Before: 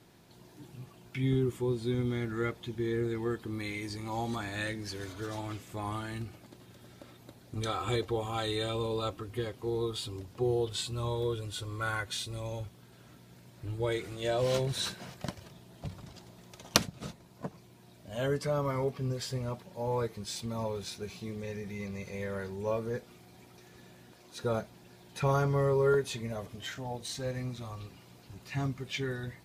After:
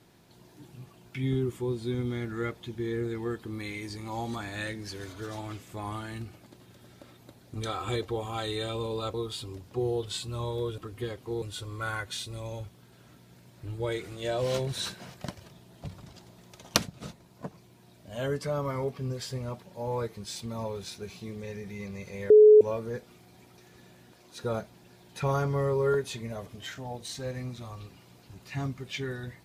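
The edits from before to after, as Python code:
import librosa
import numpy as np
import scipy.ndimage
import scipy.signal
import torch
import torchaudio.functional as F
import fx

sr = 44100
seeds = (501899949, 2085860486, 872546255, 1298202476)

y = fx.edit(x, sr, fx.move(start_s=9.14, length_s=0.64, to_s=11.42),
    fx.bleep(start_s=22.3, length_s=0.31, hz=426.0, db=-11.0), tone=tone)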